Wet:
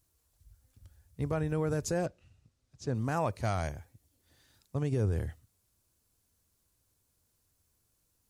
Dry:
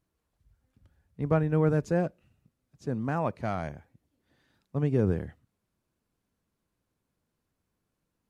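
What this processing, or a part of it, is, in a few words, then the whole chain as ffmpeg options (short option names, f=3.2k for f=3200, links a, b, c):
car stereo with a boomy subwoofer: -filter_complex "[0:a]lowshelf=f=130:t=q:w=1.5:g=8,alimiter=limit=-20dB:level=0:latency=1:release=82,asettb=1/sr,asplit=3[a][b][c];[a]atrim=end=2.064[d];[b]atrim=start=2.06:end=2.95,asetpts=PTS-STARTPTS,afade=t=in:d=0.004:c=qsin,afade=t=out:st=0.886:d=0.004:c=qsin,lowpass=5.4k[e];[c]atrim=start=2.946[f];[d][e]acrossfade=d=0.004:c1=hsin:c2=qsin[g];[g][f]acrossfade=d=0.004:c1=qsin:c2=hsin,bass=f=250:g=-3,treble=f=4k:g=15"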